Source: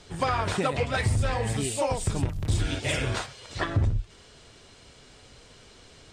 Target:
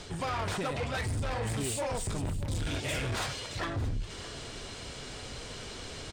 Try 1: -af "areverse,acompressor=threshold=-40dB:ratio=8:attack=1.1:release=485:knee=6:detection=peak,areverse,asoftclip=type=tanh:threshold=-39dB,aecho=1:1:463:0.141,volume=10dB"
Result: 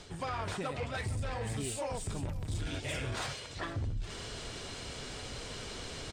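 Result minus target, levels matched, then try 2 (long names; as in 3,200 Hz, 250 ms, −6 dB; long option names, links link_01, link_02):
downward compressor: peak gain reduction +7 dB; echo 162 ms early
-af "areverse,acompressor=threshold=-32dB:ratio=8:attack=1.1:release=485:knee=6:detection=peak,areverse,asoftclip=type=tanh:threshold=-39dB,aecho=1:1:625:0.141,volume=10dB"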